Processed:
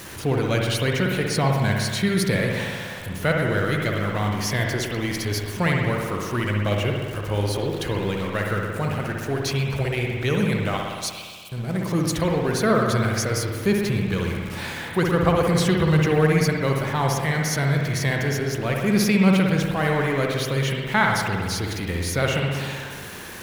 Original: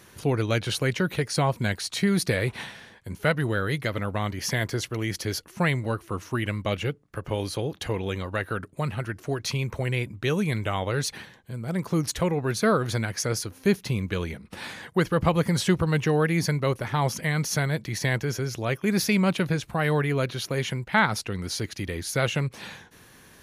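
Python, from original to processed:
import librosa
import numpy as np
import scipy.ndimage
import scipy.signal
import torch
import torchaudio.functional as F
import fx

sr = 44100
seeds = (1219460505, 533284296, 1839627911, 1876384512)

y = x + 0.5 * 10.0 ** (-35.0 / 20.0) * np.sign(x)
y = fx.brickwall_highpass(y, sr, low_hz=2200.0, at=(10.77, 11.52))
y = fx.rev_spring(y, sr, rt60_s=1.7, pass_ms=(58,), chirp_ms=70, drr_db=0.0)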